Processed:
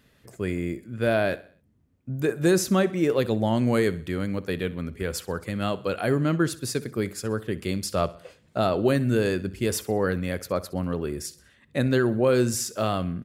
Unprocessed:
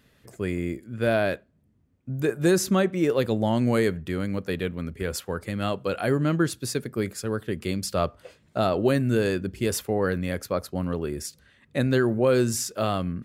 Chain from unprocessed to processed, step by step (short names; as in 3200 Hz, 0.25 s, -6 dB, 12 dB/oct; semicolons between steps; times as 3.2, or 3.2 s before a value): feedback echo 64 ms, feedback 46%, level -18.5 dB